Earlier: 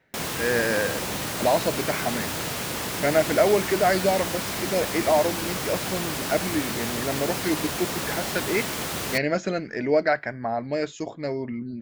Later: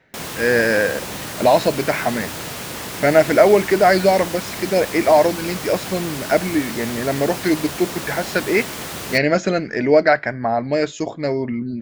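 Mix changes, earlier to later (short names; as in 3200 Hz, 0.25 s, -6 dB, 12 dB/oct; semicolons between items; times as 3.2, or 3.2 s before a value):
speech +7.0 dB; reverb: on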